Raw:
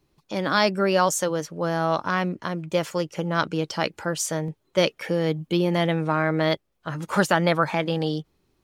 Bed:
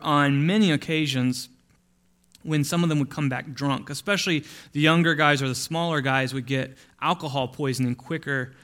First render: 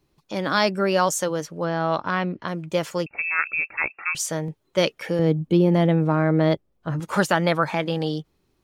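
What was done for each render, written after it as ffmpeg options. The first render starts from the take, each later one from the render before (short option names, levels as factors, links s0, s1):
-filter_complex "[0:a]asettb=1/sr,asplit=3[s0][s1][s2];[s0]atrim=end=1.644[s3];[s1]atrim=start=1.64:end=2.48,asetpts=PTS-STARTPTS,afade=t=in:d=0.004:c=qsin,afade=t=out:st=0.836:d=0.004:c=qsin,lowpass=f=4600:w=0.5412,lowpass=f=4600:w=1.3066[s4];[s2]atrim=start=2.476[s5];[s3][s4]acrossfade=d=0.004:c1=hsin:c2=qsin[s6];[s6][s5]acrossfade=d=0.004:c1=qsin:c2=hsin,asettb=1/sr,asplit=3[s7][s8][s9];[s7]atrim=end=3.064[s10];[s8]atrim=start=3.06:end=4.15,asetpts=PTS-STARTPTS,afade=t=in:d=0.004:c=qsin,afade=t=out:st=1.086:d=0.004:c=qsin,lowpass=f=2400:t=q:w=0.5098,lowpass=f=2400:t=q:w=0.6013,lowpass=f=2400:t=q:w=0.9,lowpass=f=2400:t=q:w=2.563,afreqshift=-2800[s11];[s9]atrim=start=4.146[s12];[s10][s11]acrossfade=d=0.004:c1=hsin:c2=qsin[s13];[s13][s12]acrossfade=d=0.004:c1=qsin:c2=hsin,asettb=1/sr,asplit=3[s14][s15][s16];[s14]atrim=end=5.194[s17];[s15]atrim=start=5.19:end=7,asetpts=PTS-STARTPTS,afade=t=in:d=0.004:c=qsin,afade=t=out:st=1.806:d=0.004:c=qsin,tiltshelf=f=820:g=6.5[s18];[s16]atrim=start=6.996[s19];[s17][s18]acrossfade=d=0.004:c1=hsin:c2=qsin[s20];[s20][s19]acrossfade=d=0.004:c1=qsin:c2=hsin"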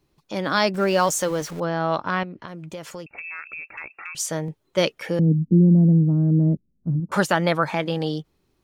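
-filter_complex "[0:a]asettb=1/sr,asplit=3[s0][s1][s2];[s0]atrim=end=0.744[s3];[s1]atrim=start=0.74:end=1.6,asetpts=PTS-STARTPTS,afade=t=in:d=0.004:c=qsin,afade=t=out:st=0.856:d=0.004:c=qsin,aeval=exprs='val(0)+0.5*0.02*sgn(val(0))':c=same[s4];[s2]atrim=start=1.596[s5];[s3][s4]acrossfade=d=0.004:c1=hsin:c2=qsin[s6];[s6][s5]acrossfade=d=0.004:c1=qsin:c2=hsin,asettb=1/sr,asplit=3[s7][s8][s9];[s7]atrim=end=2.234[s10];[s8]atrim=start=2.23:end=4.18,asetpts=PTS-STARTPTS,afade=t=in:d=0.004:c=qsin,afade=t=out:st=1.946:d=0.004:c=qsin,acompressor=threshold=0.0224:ratio=4:attack=3.2:release=140:knee=1:detection=peak[s11];[s9]atrim=start=4.176[s12];[s10][s11]acrossfade=d=0.004:c1=hsin:c2=qsin[s13];[s13][s12]acrossfade=d=0.004:c1=qsin:c2=hsin,asettb=1/sr,asplit=3[s14][s15][s16];[s14]atrim=end=5.194[s17];[s15]atrim=start=5.19:end=7.12,asetpts=PTS-STARTPTS,afade=t=in:d=0.004:c=qsin,afade=t=out:st=1.926:d=0.004:c=qsin,lowpass=f=220:t=q:w=2.4[s18];[s16]atrim=start=7.116[s19];[s17][s18]acrossfade=d=0.004:c1=hsin:c2=qsin[s20];[s20][s19]acrossfade=d=0.004:c1=qsin:c2=hsin"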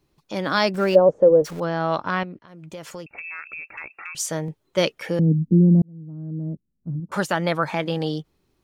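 -filter_complex "[0:a]asplit=3[s0][s1][s2];[s0]afade=t=out:st=0.94:d=0.02[s3];[s1]lowpass=f=510:t=q:w=4.1,afade=t=in:st=0.94:d=0.02,afade=t=out:st=1.44:d=0.02[s4];[s2]afade=t=in:st=1.44:d=0.02[s5];[s3][s4][s5]amix=inputs=3:normalize=0,asplit=3[s6][s7][s8];[s6]atrim=end=2.39,asetpts=PTS-STARTPTS,afade=t=out:st=2.386:d=0.004:c=hsin:silence=0.0944061[s9];[s7]atrim=start=2.39:end=5.82,asetpts=PTS-STARTPTS,afade=t=in:d=0.61:c=qsin:silence=0.0944061,afade=t=out:st=3.426:d=0.004:c=hsin[s10];[s8]atrim=start=5.82,asetpts=PTS-STARTPTS,afade=t=in:d=2.09[s11];[s9][s10][s11]concat=n=3:v=0:a=1"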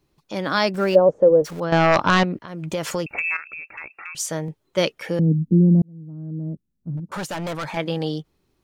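-filter_complex "[0:a]asettb=1/sr,asplit=3[s0][s1][s2];[s0]atrim=end=1.724[s3];[s1]atrim=start=1.72:end=3.37,asetpts=PTS-STARTPTS,afade=t=in:d=0.004:c=qsin,afade=t=out:st=1.646:d=0.004:c=qsin,aeval=exprs='0.355*sin(PI/2*2.24*val(0)/0.355)':c=same[s4];[s2]atrim=start=3.366[s5];[s3][s4]acrossfade=d=0.004:c1=hsin:c2=qsin[s6];[s6][s5]acrossfade=d=0.004:c1=qsin:c2=hsin,asettb=1/sr,asplit=3[s7][s8][s9];[s7]atrim=end=6.974[s10];[s8]atrim=start=6.97:end=7.77,asetpts=PTS-STARTPTS,afade=t=in:d=0.004:c=qsin,afade=t=out:st=0.796:d=0.004:c=qsin,volume=18.8,asoftclip=hard,volume=0.0531[s11];[s9]atrim=start=7.766[s12];[s10][s11]acrossfade=d=0.004:c1=hsin:c2=qsin[s13];[s13][s12]acrossfade=d=0.004:c1=qsin:c2=hsin"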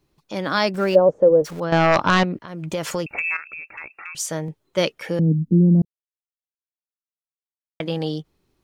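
-filter_complex "[0:a]asplit=3[s0][s1][s2];[s0]atrim=end=5.85,asetpts=PTS-STARTPTS,afade=t=out:st=5.846:d=0.004:c=hsin[s3];[s1]atrim=start=5.85:end=7.8,asetpts=PTS-STARTPTS,volume=0[s4];[s2]atrim=start=7.8,asetpts=PTS-STARTPTS,afade=t=in:d=0.004:c=hsin[s5];[s3][s4][s5]concat=n=3:v=0:a=1"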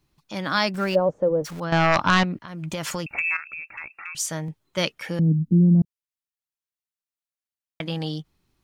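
-af "equalizer=f=450:t=o:w=1.2:g=-8.5"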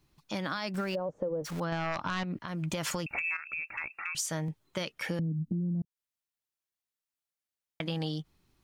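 -af "alimiter=limit=0.133:level=0:latency=1:release=182,acompressor=threshold=0.0316:ratio=6"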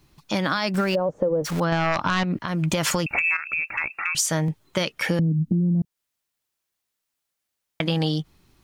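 -af "volume=3.35"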